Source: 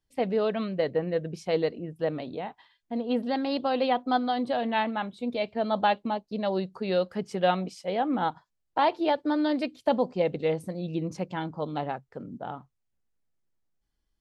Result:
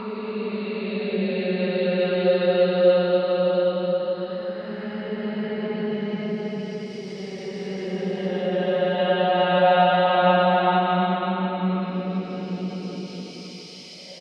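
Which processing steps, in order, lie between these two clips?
high-shelf EQ 2,000 Hz +9 dB
extreme stretch with random phases 14×, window 0.25 s, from 0:06.77
high-frequency loss of the air 350 metres
repeating echo 556 ms, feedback 52%, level −18 dB
one half of a high-frequency compander encoder only
level +4.5 dB

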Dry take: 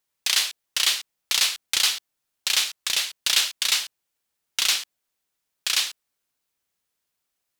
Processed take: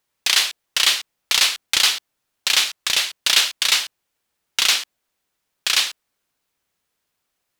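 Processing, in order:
high-shelf EQ 4,000 Hz −6 dB
level +7.5 dB

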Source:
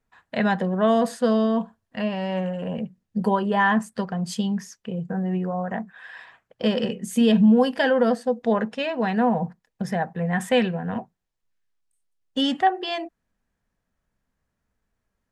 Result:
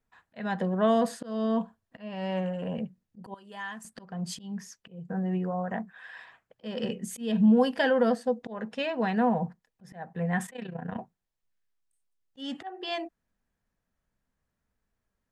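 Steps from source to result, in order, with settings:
volume swells 301 ms
0:03.34–0:03.85: first-order pre-emphasis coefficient 0.9
0:10.46–0:10.99: amplitude modulation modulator 30 Hz, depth 70%
level −4 dB

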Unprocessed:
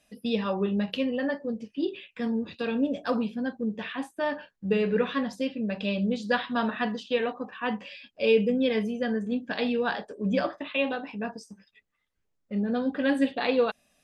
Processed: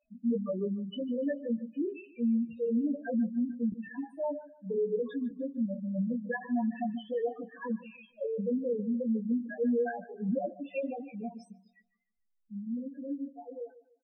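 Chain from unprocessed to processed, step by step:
fade-out on the ending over 2.96 s
spectral peaks only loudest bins 2
0:03.72–0:05.31: Chebyshev high-pass filter 250 Hz, order 3
brickwall limiter −26 dBFS, peak gain reduction 11 dB
double-tracking delay 17 ms −5 dB
on a send: delay with a low-pass on its return 148 ms, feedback 31%, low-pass 3,500 Hz, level −17 dB

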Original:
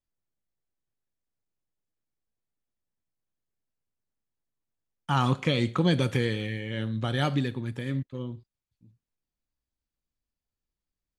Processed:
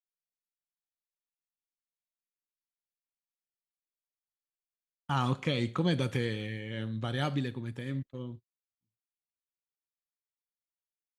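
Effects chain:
noise gate −39 dBFS, range −27 dB
level −5 dB

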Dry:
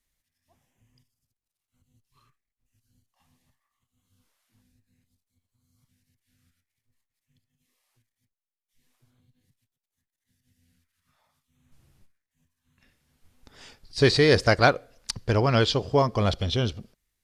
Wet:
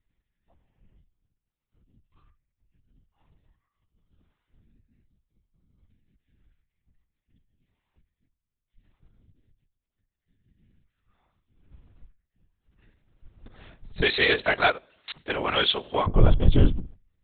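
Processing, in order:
mains-hum notches 50/100/150 Hz
linear-prediction vocoder at 8 kHz whisper
spectral tilt −2 dB per octave, from 0:14.01 +4 dB per octave, from 0:16.06 −3 dB per octave
level −1 dB

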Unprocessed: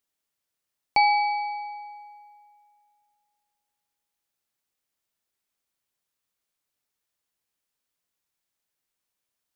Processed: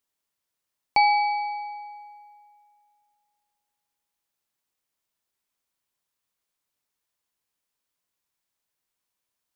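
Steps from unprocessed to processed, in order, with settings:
parametric band 1,000 Hz +4 dB 0.26 octaves

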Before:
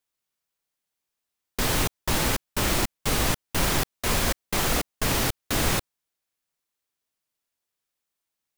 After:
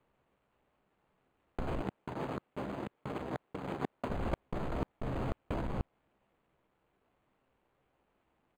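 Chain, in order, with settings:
running median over 25 samples
gain into a clipping stage and back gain 31 dB
double-tracking delay 15 ms −7.5 dB
compressor whose output falls as the input rises −43 dBFS, ratio −1
0:01.81–0:04.10: high-pass filter 150 Hz 12 dB per octave
linearly interpolated sample-rate reduction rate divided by 8×
level +8.5 dB

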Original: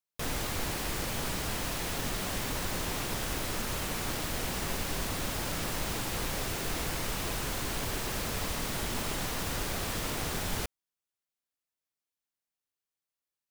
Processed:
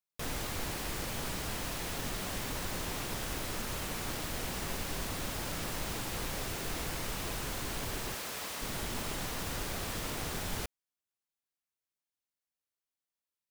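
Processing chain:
0:08.14–0:08.62: high-pass filter 530 Hz 6 dB per octave
level −3.5 dB

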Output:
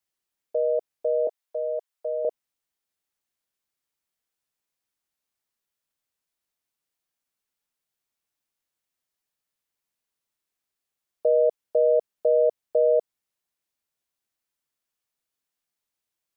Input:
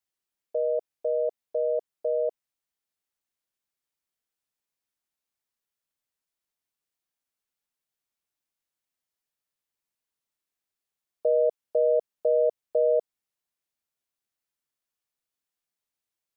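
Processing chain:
0:01.27–0:02.25: high-pass filter 650 Hz 12 dB per octave
level +2.5 dB

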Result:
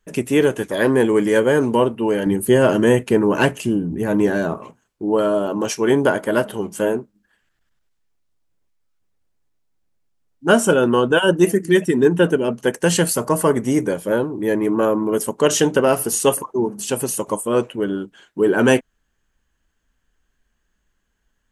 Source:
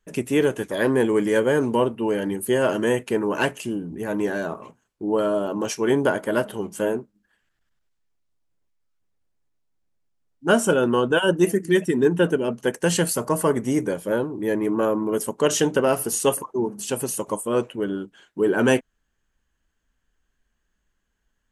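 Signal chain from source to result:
0:02.26–0:04.58: low-shelf EQ 280 Hz +8 dB
level +4 dB

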